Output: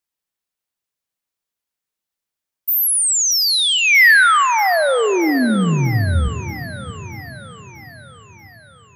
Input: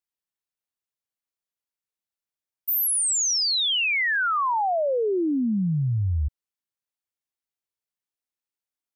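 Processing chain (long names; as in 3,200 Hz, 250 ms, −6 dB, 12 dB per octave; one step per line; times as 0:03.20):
0:03.78–0:04.45: low-pass with resonance 2,000 Hz, resonance Q 2.4
feedback echo with a high-pass in the loop 634 ms, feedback 63%, high-pass 280 Hz, level −12 dB
on a send at −15 dB: convolution reverb RT60 3.1 s, pre-delay 3 ms
on the sum: level +6.5 dB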